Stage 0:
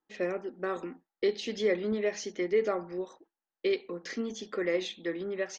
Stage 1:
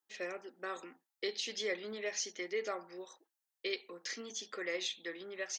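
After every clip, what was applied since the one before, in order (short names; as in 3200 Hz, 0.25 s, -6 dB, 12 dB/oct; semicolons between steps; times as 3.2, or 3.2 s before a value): HPF 830 Hz 6 dB/oct; high shelf 3700 Hz +11.5 dB; gain -4.5 dB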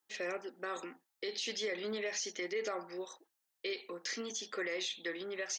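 limiter -33.5 dBFS, peak gain reduction 10.5 dB; gain +5 dB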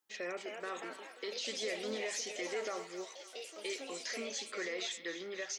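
on a send: thinning echo 0.269 s, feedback 75%, high-pass 1100 Hz, level -11.5 dB; on the sum: echoes that change speed 0.288 s, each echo +3 st, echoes 3, each echo -6 dB; gain -2 dB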